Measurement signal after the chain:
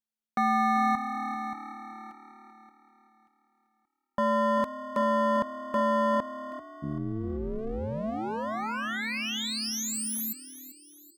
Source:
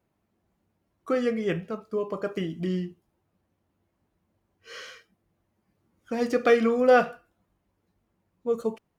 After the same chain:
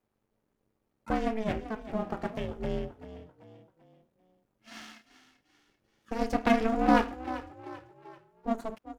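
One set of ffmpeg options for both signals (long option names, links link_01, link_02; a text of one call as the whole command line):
ffmpeg -i in.wav -filter_complex "[0:a]aeval=exprs='if(lt(val(0),0),0.251*val(0),val(0))':channel_layout=same,aeval=exprs='val(0)*sin(2*PI*220*n/s)':channel_layout=same,asplit=5[link_01][link_02][link_03][link_04][link_05];[link_02]adelay=389,afreqshift=37,volume=-14dB[link_06];[link_03]adelay=778,afreqshift=74,volume=-21.5dB[link_07];[link_04]adelay=1167,afreqshift=111,volume=-29.1dB[link_08];[link_05]adelay=1556,afreqshift=148,volume=-36.6dB[link_09];[link_01][link_06][link_07][link_08][link_09]amix=inputs=5:normalize=0,volume=1.5dB" out.wav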